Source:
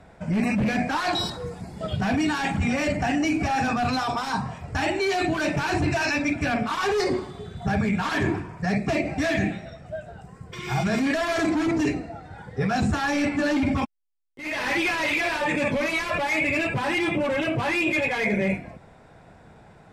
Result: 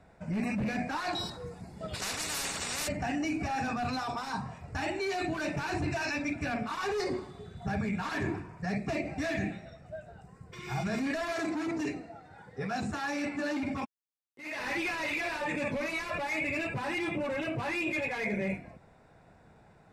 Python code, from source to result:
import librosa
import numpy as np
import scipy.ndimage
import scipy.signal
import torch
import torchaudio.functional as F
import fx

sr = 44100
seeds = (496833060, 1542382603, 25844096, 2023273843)

y = fx.spectral_comp(x, sr, ratio=10.0, at=(1.93, 2.87), fade=0.02)
y = fx.highpass(y, sr, hz=200.0, slope=6, at=(11.32, 14.59))
y = fx.notch(y, sr, hz=3200.0, q=10.0)
y = y * 10.0 ** (-8.5 / 20.0)